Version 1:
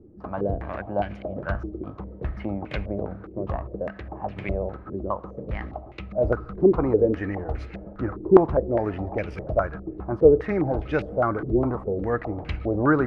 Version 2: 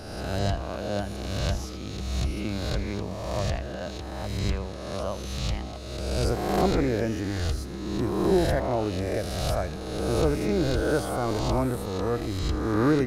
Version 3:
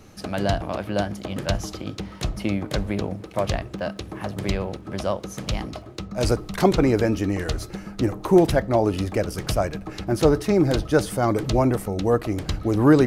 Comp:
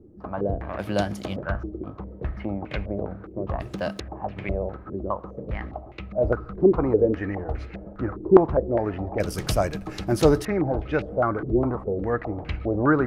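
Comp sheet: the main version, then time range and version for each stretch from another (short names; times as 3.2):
1
0.79–1.36 from 3
3.6–4 from 3
9.2–10.45 from 3
not used: 2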